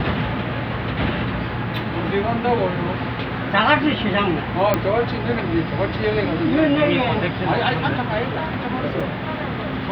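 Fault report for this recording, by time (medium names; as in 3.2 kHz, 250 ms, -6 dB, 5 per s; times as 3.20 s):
4.74 s: pop -5 dBFS
9.00 s: dropout 3.8 ms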